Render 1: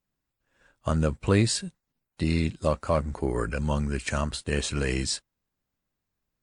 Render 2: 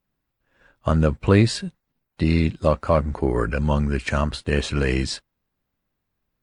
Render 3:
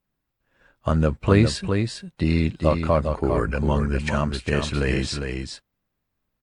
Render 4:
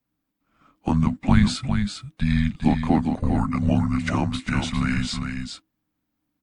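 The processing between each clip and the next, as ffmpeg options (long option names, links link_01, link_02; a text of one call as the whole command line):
ffmpeg -i in.wav -af "equalizer=frequency=8300:width_type=o:width=1.3:gain=-11.5,volume=6dB" out.wav
ffmpeg -i in.wav -af "aecho=1:1:403:0.501,volume=-1.5dB" out.wav
ffmpeg -i in.wav -af "afreqshift=-320" out.wav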